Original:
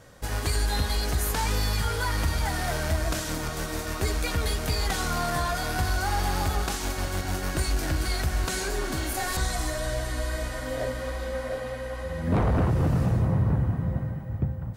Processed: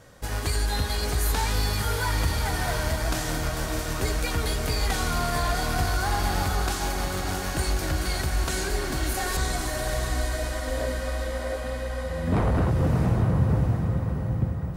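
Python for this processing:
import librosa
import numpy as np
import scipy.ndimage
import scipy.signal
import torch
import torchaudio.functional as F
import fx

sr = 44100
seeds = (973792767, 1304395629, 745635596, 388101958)

y = fx.echo_diffused(x, sr, ms=651, feedback_pct=44, wet_db=-6)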